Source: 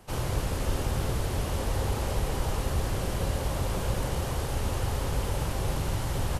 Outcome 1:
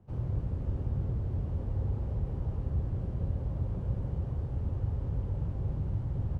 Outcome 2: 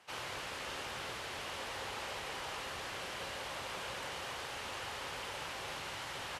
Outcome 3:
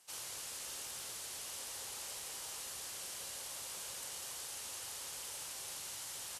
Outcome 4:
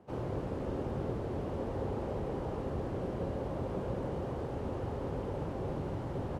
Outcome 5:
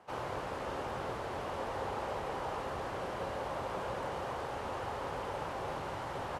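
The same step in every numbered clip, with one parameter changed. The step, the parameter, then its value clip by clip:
band-pass, frequency: 100, 2400, 8000, 330, 940 Hz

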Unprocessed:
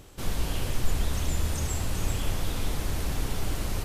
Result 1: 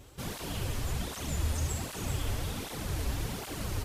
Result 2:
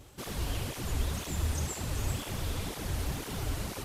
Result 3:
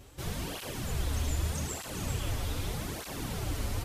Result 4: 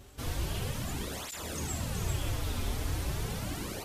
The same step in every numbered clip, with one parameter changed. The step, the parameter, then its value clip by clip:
tape flanging out of phase, nulls at: 1.3, 2, 0.82, 0.38 Hz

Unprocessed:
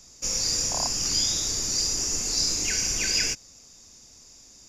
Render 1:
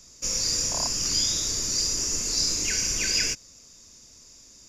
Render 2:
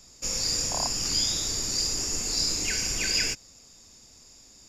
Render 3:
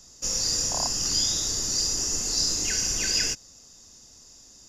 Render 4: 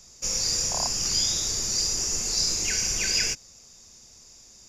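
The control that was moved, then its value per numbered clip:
notch, frequency: 780, 6000, 2300, 280 Hz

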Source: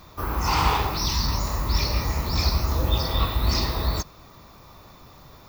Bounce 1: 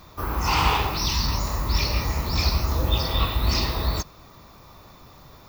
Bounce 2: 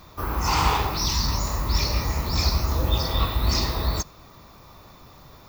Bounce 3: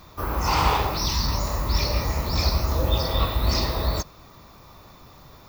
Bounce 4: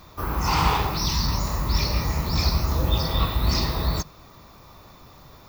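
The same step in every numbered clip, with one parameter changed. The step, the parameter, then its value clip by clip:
dynamic EQ, frequency: 2800, 7000, 570, 160 Hz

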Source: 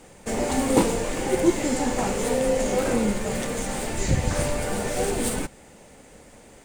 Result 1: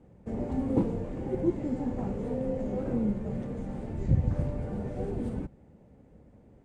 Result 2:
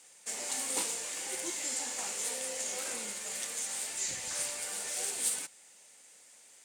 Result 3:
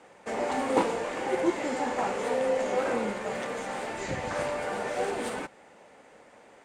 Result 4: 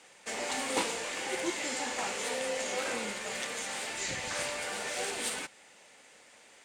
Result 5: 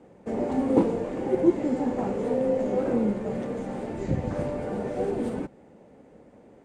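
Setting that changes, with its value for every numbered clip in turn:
band-pass, frequency: 100, 7900, 1100, 3100, 300 Hz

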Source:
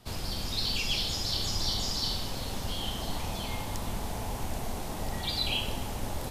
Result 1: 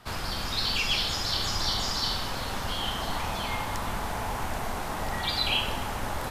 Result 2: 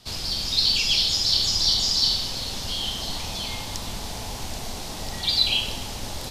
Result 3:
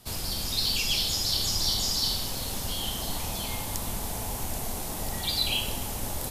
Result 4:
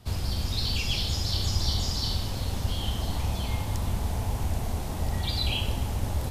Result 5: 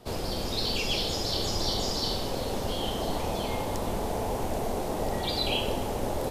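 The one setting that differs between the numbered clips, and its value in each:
bell, frequency: 1400, 4700, 13000, 74, 470 Hz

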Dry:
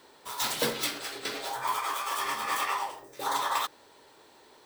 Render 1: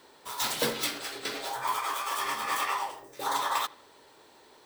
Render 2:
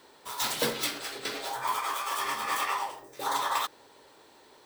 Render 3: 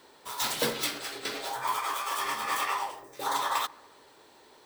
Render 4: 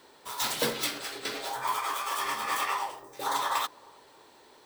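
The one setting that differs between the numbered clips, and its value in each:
analogue delay, time: 79, 537, 143, 314 ms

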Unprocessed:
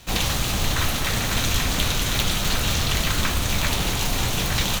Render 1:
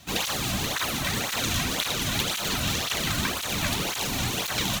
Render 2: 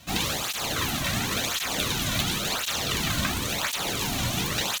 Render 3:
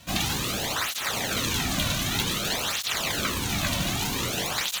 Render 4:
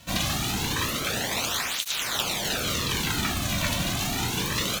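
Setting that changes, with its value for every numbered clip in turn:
tape flanging out of phase, nulls at: 1.9, 0.94, 0.53, 0.27 Hz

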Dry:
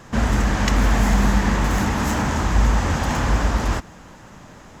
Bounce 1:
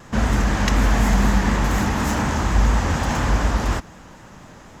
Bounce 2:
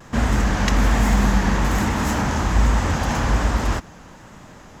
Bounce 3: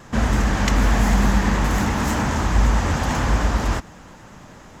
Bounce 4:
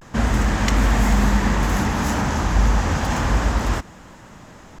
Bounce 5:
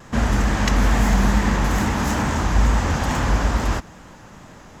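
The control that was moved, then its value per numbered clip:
vibrato, rate: 4.1, 1.2, 9.1, 0.31, 2.3 Hz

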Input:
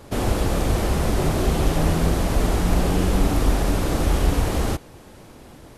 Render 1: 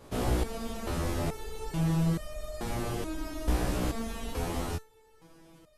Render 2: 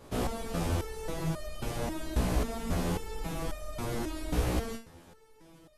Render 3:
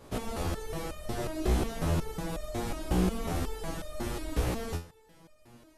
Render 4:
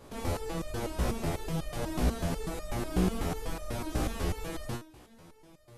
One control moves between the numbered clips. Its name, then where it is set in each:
stepped resonator, rate: 2.3, 3.7, 5.5, 8.1 Hz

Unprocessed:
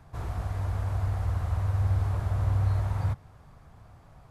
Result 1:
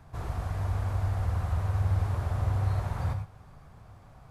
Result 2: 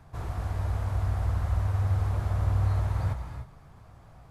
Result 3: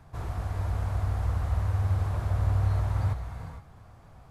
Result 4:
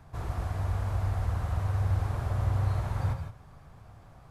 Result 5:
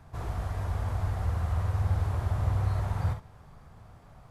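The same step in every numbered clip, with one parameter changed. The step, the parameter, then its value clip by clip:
non-linear reverb, gate: 130, 330, 490, 190, 80 ms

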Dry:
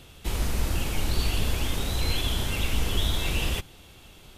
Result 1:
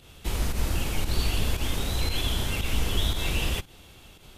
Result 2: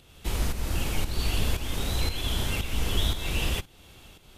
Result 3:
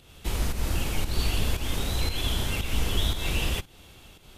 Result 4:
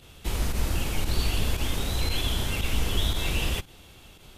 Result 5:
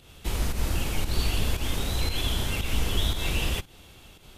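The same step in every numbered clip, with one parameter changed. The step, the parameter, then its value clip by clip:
pump, release: 99, 428, 223, 60, 147 ms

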